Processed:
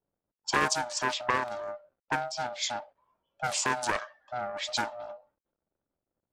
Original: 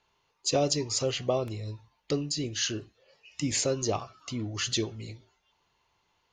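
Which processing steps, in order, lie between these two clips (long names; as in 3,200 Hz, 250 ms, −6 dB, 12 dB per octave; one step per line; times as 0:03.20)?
frequency shifter +490 Hz
bit reduction 11 bits
low-pass that shuts in the quiet parts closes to 470 Hz, open at −23.5 dBFS
highs frequency-modulated by the lows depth 0.37 ms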